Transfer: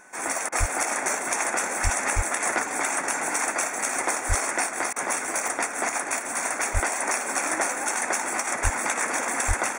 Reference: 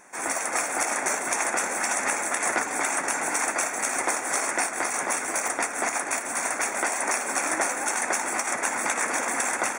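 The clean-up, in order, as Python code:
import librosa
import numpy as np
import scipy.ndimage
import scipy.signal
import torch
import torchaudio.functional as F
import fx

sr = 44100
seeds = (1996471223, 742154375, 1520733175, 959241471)

y = fx.notch(x, sr, hz=1500.0, q=30.0)
y = fx.fix_deplosive(y, sr, at_s=(0.59, 1.83, 2.15, 4.28, 6.73, 8.63, 9.47))
y = fx.fix_interpolate(y, sr, at_s=(0.49, 4.93), length_ms=31.0)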